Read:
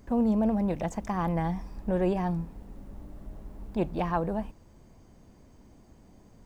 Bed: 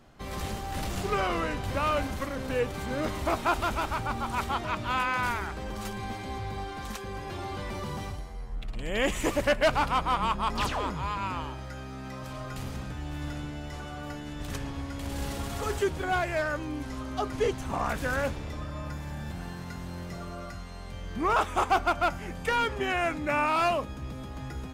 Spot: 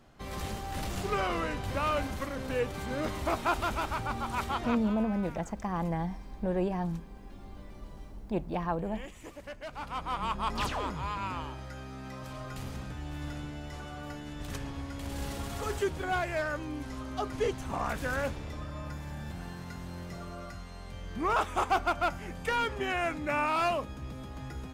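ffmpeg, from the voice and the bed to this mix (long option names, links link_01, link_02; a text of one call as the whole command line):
ffmpeg -i stem1.wav -i stem2.wav -filter_complex "[0:a]adelay=4550,volume=-3.5dB[link_01];[1:a]volume=13.5dB,afade=type=out:start_time=4.66:duration=0.29:silence=0.149624,afade=type=in:start_time=9.69:duration=0.78:silence=0.158489[link_02];[link_01][link_02]amix=inputs=2:normalize=0" out.wav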